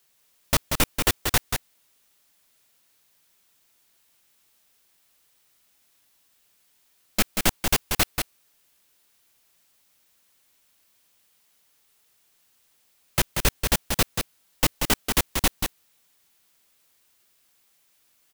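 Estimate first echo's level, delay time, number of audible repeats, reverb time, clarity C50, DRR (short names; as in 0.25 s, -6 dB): -5.5 dB, 0.185 s, 1, none, none, none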